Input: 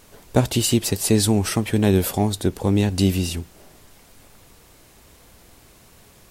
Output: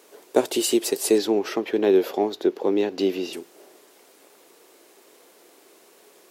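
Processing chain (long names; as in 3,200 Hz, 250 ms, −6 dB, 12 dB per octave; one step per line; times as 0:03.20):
0:01.18–0:03.33: moving average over 5 samples
surface crackle 290 per second −51 dBFS
four-pole ladder high-pass 320 Hz, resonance 50%
level +6.5 dB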